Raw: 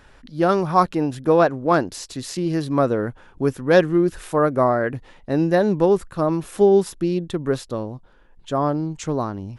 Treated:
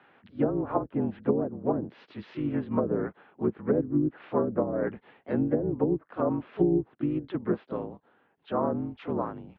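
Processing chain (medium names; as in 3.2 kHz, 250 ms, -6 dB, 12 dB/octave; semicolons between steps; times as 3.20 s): low-pass that closes with the level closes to 340 Hz, closed at -12.5 dBFS; mistuned SSB -51 Hz 260–3100 Hz; harmony voices -12 st -7 dB, -3 st -10 dB, +3 st -9 dB; trim -6.5 dB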